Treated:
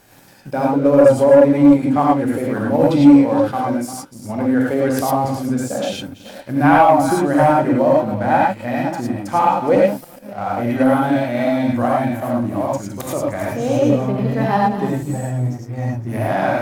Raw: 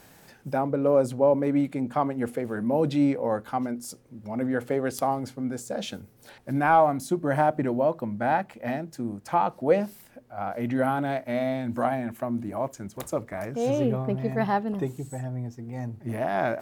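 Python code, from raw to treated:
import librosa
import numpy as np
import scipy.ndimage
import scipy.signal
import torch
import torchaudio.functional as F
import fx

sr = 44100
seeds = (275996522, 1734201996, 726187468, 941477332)

p1 = fx.reverse_delay(x, sr, ms=287, wet_db=-12.0)
p2 = fx.level_steps(p1, sr, step_db=11)
p3 = p1 + (p2 * 10.0 ** (0.0 / 20.0))
p4 = fx.rev_gated(p3, sr, seeds[0], gate_ms=130, shape='rising', drr_db=-3.0)
p5 = fx.leveller(p4, sr, passes=1)
y = p5 * 10.0 ** (-3.0 / 20.0)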